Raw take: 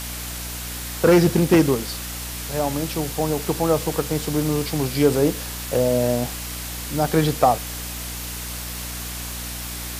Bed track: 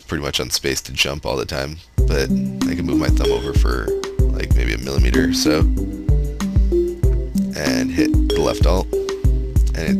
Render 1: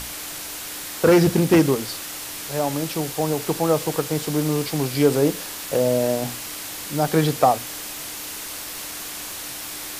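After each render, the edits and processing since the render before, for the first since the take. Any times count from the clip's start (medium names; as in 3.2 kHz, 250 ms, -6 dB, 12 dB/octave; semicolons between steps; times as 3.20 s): hum notches 60/120/180/240 Hz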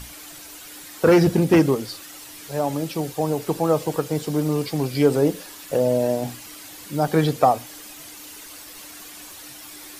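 noise reduction 10 dB, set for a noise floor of -33 dBFS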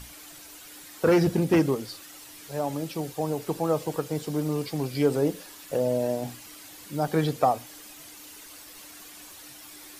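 trim -5.5 dB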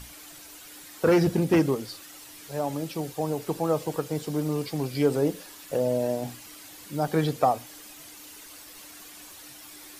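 no audible change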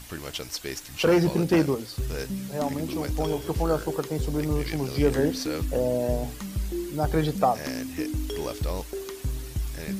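add bed track -14 dB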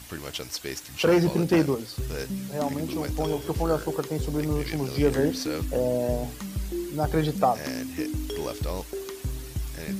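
high-pass 53 Hz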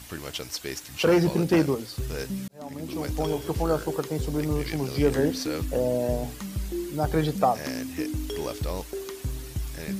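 2.48–3.09 s: fade in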